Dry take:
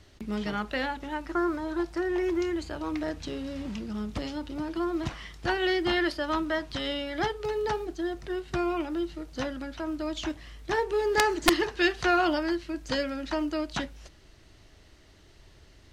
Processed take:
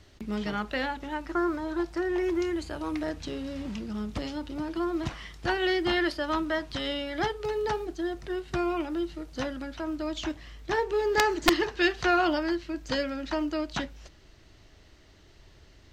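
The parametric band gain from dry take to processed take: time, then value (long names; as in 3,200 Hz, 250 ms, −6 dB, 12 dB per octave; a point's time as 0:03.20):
parametric band 10,000 Hz 0.37 octaves
0:02.02 −3 dB
0:02.88 +8 dB
0:03.17 −1 dB
0:09.57 −1 dB
0:10.62 −10.5 dB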